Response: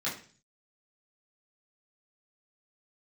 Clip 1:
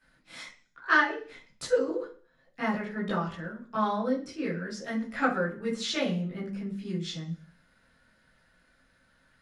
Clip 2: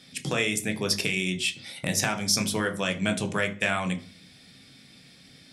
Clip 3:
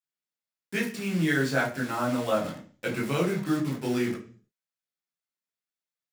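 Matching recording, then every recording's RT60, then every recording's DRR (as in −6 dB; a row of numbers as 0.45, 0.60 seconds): 1; 0.40, 0.40, 0.40 seconds; −9.0, 6.0, −3.5 decibels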